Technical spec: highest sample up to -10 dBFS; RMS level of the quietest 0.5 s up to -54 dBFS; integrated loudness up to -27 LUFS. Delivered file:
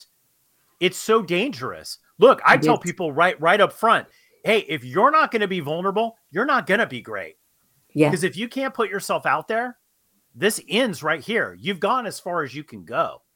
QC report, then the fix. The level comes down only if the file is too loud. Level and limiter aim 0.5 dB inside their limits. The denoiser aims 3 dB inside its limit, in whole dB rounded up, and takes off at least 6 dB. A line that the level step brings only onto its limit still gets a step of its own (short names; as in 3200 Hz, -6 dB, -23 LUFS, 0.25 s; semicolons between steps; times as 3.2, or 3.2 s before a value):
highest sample -3.0 dBFS: fail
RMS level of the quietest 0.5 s -66 dBFS: OK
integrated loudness -21.0 LUFS: fail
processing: gain -6.5 dB; limiter -10.5 dBFS